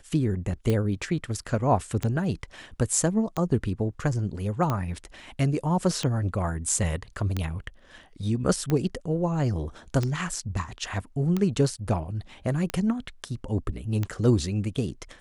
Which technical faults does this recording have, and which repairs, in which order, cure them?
scratch tick 45 rpm −14 dBFS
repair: click removal

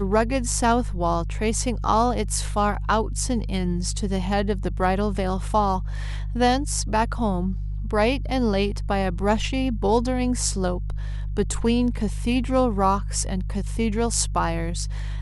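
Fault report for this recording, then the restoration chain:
mains hum 50 Hz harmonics 3 −28 dBFS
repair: hum removal 50 Hz, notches 3

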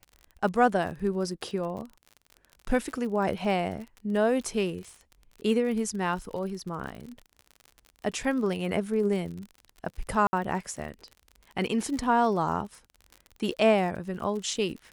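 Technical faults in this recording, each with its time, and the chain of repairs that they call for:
surface crackle 52 per second −36 dBFS
0:10.27–0:10.33: drop-out 60 ms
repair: click removal
repair the gap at 0:10.27, 60 ms

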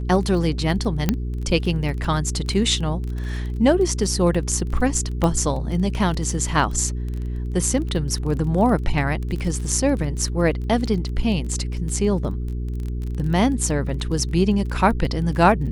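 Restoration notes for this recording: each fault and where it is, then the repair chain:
surface crackle 21 per second −28 dBFS
mains hum 60 Hz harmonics 7 −26 dBFS
0:01.09: click −5 dBFS
0:05.24: click −10 dBFS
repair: click removal
hum removal 60 Hz, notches 7

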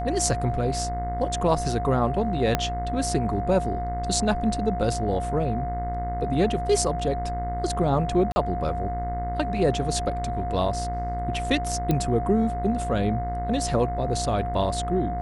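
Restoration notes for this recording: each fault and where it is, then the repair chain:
mains buzz 60 Hz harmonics 36 −31 dBFS
whistle 710 Hz −29 dBFS
0:02.55: click −7 dBFS
0:08.32–0:08.36: drop-out 40 ms
0:11.91: click −11 dBFS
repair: click removal
hum removal 60 Hz, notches 36
notch filter 710 Hz, Q 30
repair the gap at 0:08.32, 40 ms

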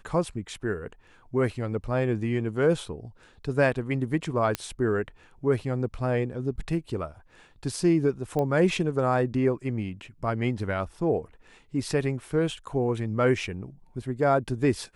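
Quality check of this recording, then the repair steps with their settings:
0:04.55: click −11 dBFS
0:08.39: click −17 dBFS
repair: click removal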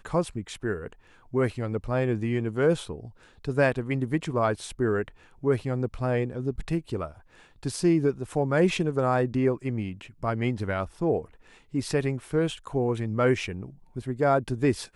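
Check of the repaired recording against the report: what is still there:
none of them is left

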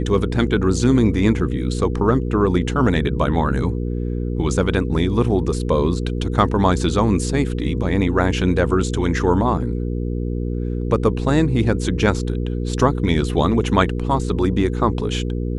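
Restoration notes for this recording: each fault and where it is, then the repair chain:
mains hum 60 Hz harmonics 8 −23 dBFS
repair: hum removal 60 Hz, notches 8

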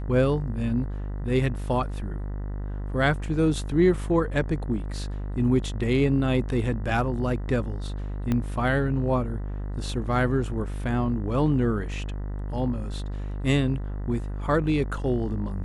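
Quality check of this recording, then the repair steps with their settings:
mains buzz 50 Hz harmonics 40 −31 dBFS
0:08.32: click −14 dBFS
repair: click removal
hum removal 50 Hz, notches 40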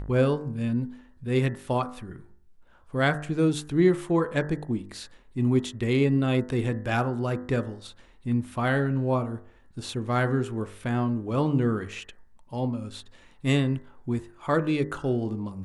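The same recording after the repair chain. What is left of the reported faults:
0:08.32: click

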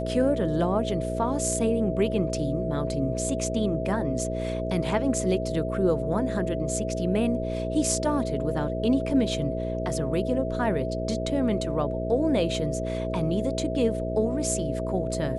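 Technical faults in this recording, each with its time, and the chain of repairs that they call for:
mains buzz 60 Hz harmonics 9 −31 dBFS
whistle 650 Hz −31 dBFS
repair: hum removal 60 Hz, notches 9
notch filter 650 Hz, Q 30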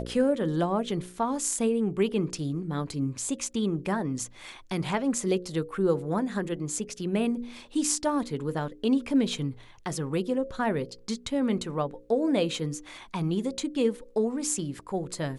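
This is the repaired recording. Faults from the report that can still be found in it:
none of them is left

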